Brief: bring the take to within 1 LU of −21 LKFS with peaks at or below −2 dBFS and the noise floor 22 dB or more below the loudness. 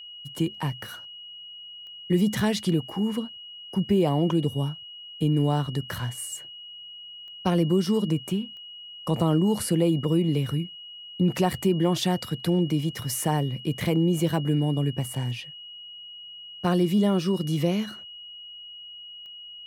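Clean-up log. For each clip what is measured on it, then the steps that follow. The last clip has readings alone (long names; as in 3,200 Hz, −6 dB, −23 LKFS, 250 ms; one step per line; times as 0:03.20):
number of clicks 4; interfering tone 2,900 Hz; level of the tone −40 dBFS; integrated loudness −25.5 LKFS; sample peak −10.0 dBFS; target loudness −21.0 LKFS
→ click removal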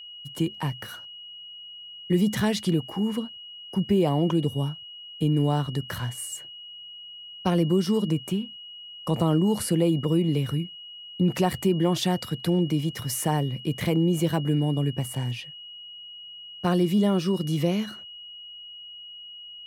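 number of clicks 0; interfering tone 2,900 Hz; level of the tone −40 dBFS
→ notch filter 2,900 Hz, Q 30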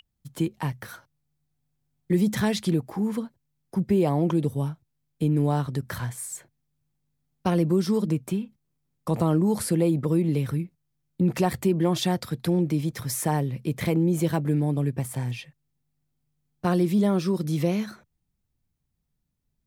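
interfering tone none found; integrated loudness −25.5 LKFS; sample peak −10.0 dBFS; target loudness −21.0 LKFS
→ level +4.5 dB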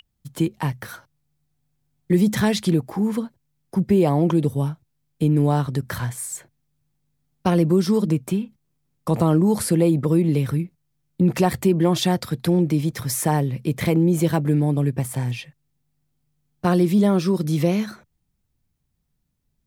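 integrated loudness −21.0 LKFS; sample peak −5.5 dBFS; background noise floor −73 dBFS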